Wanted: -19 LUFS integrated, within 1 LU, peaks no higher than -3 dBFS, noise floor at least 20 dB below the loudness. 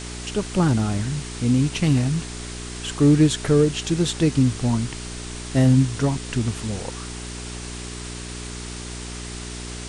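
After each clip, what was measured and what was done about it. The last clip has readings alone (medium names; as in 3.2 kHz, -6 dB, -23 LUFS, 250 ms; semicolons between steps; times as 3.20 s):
hum 60 Hz; highest harmonic 420 Hz; hum level -32 dBFS; noise floor -34 dBFS; noise floor target -43 dBFS; loudness -22.5 LUFS; peak level -6.0 dBFS; loudness target -19.0 LUFS
-> de-hum 60 Hz, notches 7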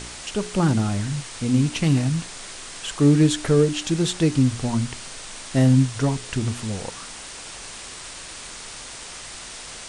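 hum not found; noise floor -38 dBFS; noise floor target -42 dBFS
-> noise print and reduce 6 dB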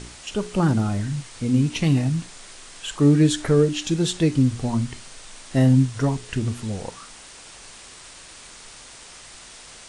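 noise floor -44 dBFS; loudness -22.0 LUFS; peak level -6.5 dBFS; loudness target -19.0 LUFS
-> trim +3 dB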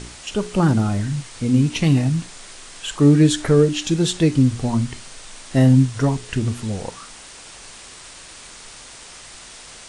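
loudness -19.0 LUFS; peak level -3.5 dBFS; noise floor -41 dBFS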